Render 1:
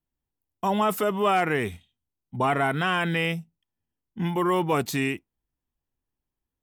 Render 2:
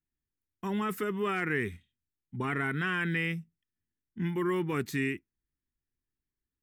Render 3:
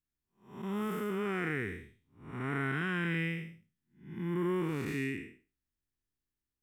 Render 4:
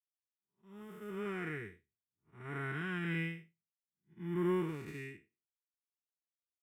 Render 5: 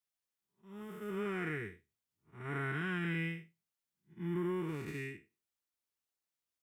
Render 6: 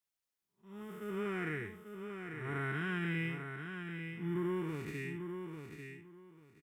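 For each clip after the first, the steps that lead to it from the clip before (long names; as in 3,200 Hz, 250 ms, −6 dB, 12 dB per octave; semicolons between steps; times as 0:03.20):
drawn EQ curve 400 Hz 0 dB, 640 Hz −18 dB, 1,800 Hz +4 dB, 3,000 Hz −6 dB; level −4.5 dB
spectrum smeared in time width 264 ms
fade in at the beginning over 1.25 s; notch comb filter 260 Hz; expander for the loud parts 2.5 to 1, over −54 dBFS; level +1 dB
downward compressor 6 to 1, threshold −36 dBFS, peak gain reduction 8 dB; level +3.5 dB
repeating echo 843 ms, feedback 20%, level −7 dB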